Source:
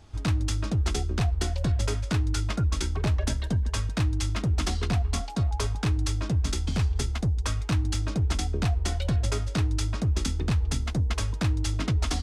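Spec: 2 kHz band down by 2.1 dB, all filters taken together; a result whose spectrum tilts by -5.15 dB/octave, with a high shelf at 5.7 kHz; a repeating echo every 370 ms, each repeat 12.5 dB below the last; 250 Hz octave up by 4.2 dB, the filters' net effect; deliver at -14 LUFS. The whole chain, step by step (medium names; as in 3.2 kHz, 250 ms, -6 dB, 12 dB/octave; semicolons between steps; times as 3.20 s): peaking EQ 250 Hz +6 dB; peaking EQ 2 kHz -4 dB; treble shelf 5.7 kHz +8 dB; feedback delay 370 ms, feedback 24%, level -12.5 dB; trim +12 dB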